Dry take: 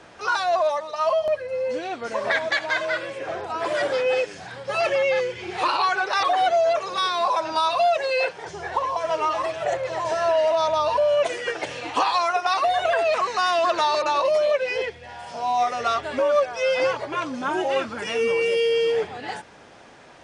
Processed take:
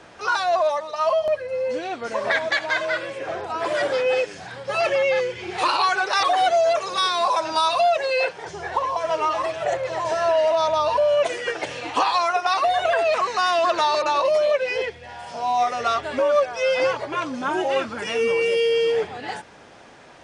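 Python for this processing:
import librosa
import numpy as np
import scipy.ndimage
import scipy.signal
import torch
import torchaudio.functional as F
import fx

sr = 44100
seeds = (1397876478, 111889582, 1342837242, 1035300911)

y = fx.high_shelf(x, sr, hz=6000.0, db=9.0, at=(5.58, 7.81))
y = F.gain(torch.from_numpy(y), 1.0).numpy()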